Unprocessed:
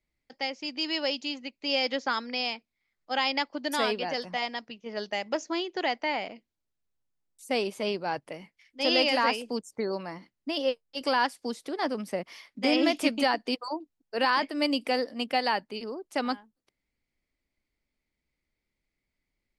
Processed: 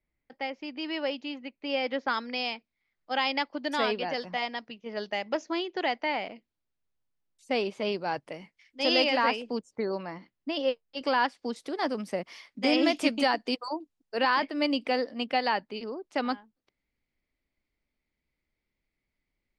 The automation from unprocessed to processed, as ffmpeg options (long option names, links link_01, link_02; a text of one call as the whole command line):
ffmpeg -i in.wav -af "asetnsamples=nb_out_samples=441:pad=0,asendcmd='2.08 lowpass f 4500;7.92 lowpass f 7800;9.04 lowpass f 4000;11.56 lowpass f 9000;14.19 lowpass f 4500',lowpass=2400" out.wav